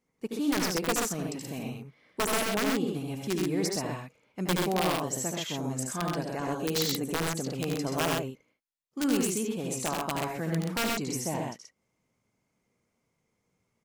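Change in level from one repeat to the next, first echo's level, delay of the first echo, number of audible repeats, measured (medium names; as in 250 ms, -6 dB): no regular repeats, -5.5 dB, 74 ms, 2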